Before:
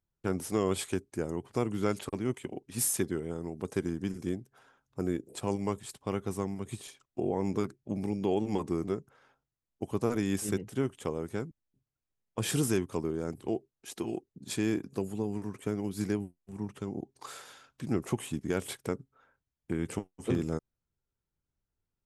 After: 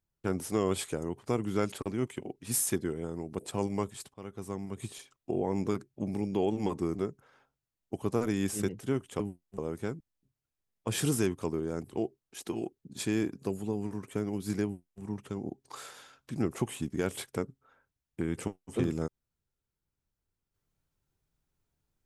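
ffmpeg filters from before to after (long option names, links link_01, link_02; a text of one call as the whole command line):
ffmpeg -i in.wav -filter_complex "[0:a]asplit=6[link_01][link_02][link_03][link_04][link_05][link_06];[link_01]atrim=end=0.932[link_07];[link_02]atrim=start=1.198:end=3.662[link_08];[link_03]atrim=start=5.278:end=6.03,asetpts=PTS-STARTPTS,afade=type=out:start_time=0.748:duration=0.004:curve=hsin:silence=0.16788[link_09];[link_04]atrim=start=6.03:end=11.092,asetpts=PTS-STARTPTS,afade=type=in:duration=0.7:silence=0.16788[link_10];[link_05]atrim=start=16.148:end=16.532[link_11];[link_06]atrim=start=11.088[link_12];[link_07][link_08]acrossfade=duration=0.004:curve1=hsin:curve2=hsin[link_13];[link_09][link_10]concat=n=2:v=0:a=1[link_14];[link_13][link_14]acrossfade=duration=0.004:curve1=hsin:curve2=hsin[link_15];[link_15][link_11]acrossfade=duration=0.004:curve1=hsin:curve2=hsin[link_16];[link_16][link_12]acrossfade=duration=0.004:curve1=hsin:curve2=hsin" out.wav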